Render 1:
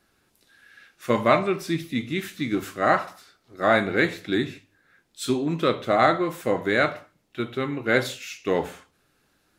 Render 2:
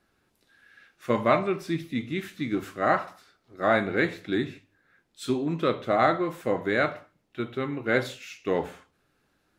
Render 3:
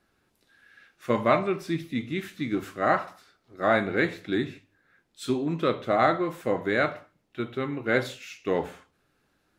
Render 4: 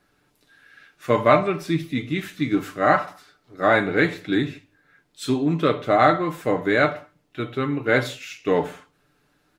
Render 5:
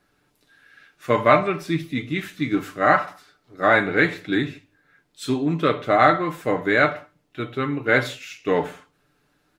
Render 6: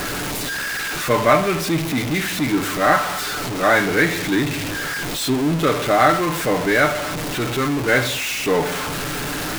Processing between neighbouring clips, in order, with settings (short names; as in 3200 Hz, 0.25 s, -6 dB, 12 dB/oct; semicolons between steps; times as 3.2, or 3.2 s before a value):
high shelf 3700 Hz -7 dB; gain -2.5 dB
nothing audible
comb 6.8 ms, depth 47%; gain +4.5 dB
dynamic EQ 1800 Hz, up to +4 dB, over -33 dBFS, Q 0.83; gain -1 dB
zero-crossing step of -18.5 dBFS; gain -1 dB